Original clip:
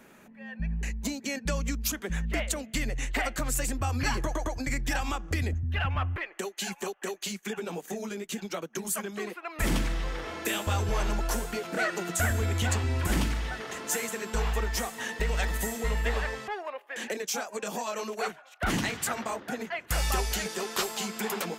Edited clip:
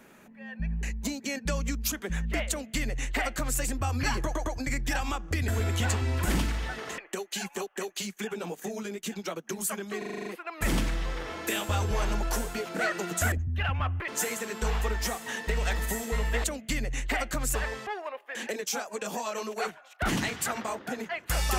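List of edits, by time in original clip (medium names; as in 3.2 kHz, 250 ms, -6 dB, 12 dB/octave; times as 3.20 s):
2.49–3.60 s: copy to 16.16 s
5.48–6.24 s: swap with 12.30–13.80 s
9.24 s: stutter 0.04 s, 8 plays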